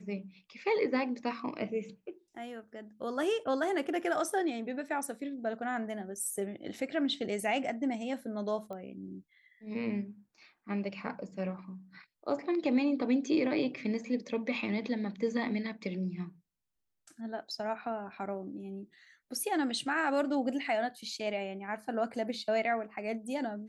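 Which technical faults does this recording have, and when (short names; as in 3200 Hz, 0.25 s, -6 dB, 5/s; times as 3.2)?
8.73 pop -31 dBFS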